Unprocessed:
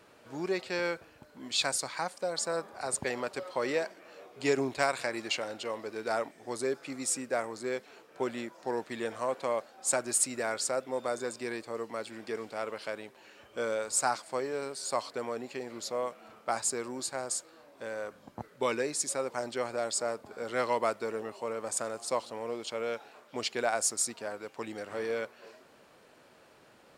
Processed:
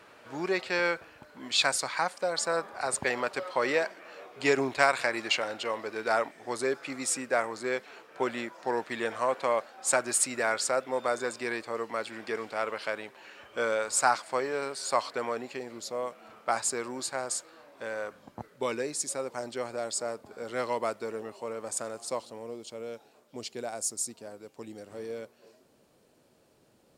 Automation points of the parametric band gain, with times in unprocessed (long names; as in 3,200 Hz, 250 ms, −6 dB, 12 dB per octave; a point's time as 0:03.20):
parametric band 1,600 Hz 2.8 octaves
0:15.33 +7 dB
0:15.82 −3 dB
0:16.49 +4.5 dB
0:18.00 +4.5 dB
0:18.66 −2.5 dB
0:22.05 −2.5 dB
0:22.62 −12.5 dB